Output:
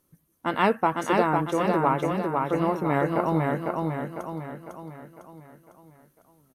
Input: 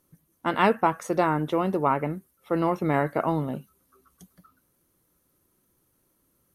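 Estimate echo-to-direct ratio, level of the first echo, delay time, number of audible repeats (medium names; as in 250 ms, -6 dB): -2.0 dB, -3.0 dB, 502 ms, 6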